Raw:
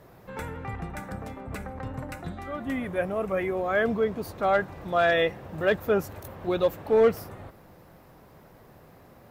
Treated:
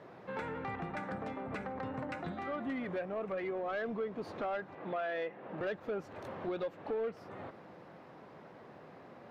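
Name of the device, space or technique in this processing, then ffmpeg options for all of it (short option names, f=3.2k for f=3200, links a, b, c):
AM radio: -filter_complex "[0:a]highpass=190,lowpass=3.5k,acompressor=threshold=-35dB:ratio=4,asoftclip=type=tanh:threshold=-30dB,asettb=1/sr,asplit=3[a][b][c];[a]atrim=end=4.754[d];[b]atrim=start=4.75:end=5.61,asetpts=PTS-STARTPTS,afade=t=in:d=0.004:c=qsin,afade=t=out:st=0.856:d=0.004:c=qsin,acrossover=split=160 3500:gain=0.178 1 0.178[e][f][g];[e][f][g]amix=inputs=3:normalize=0[h];[c]atrim=start=5.606[i];[d][h]acrossfade=d=0.004:c1=hsin:c2=qsin[j];[j][i]acrossfade=d=0.004:c1=qsin:c2=hsin,volume=1dB"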